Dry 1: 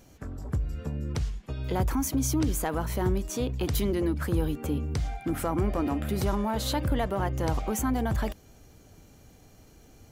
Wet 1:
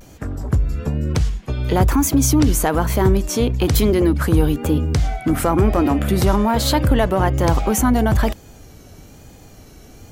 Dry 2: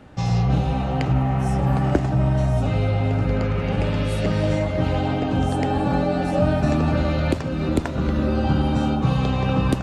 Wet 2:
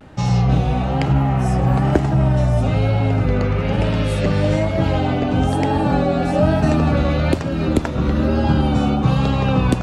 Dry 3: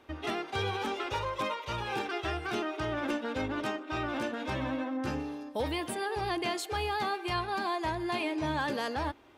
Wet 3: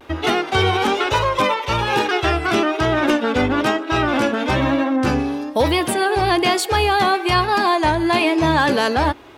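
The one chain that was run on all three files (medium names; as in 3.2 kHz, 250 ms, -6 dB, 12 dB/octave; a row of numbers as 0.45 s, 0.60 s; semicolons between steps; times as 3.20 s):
vibrato 1.1 Hz 77 cents; normalise loudness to -18 LUFS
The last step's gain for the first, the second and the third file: +11.5 dB, +3.5 dB, +15.5 dB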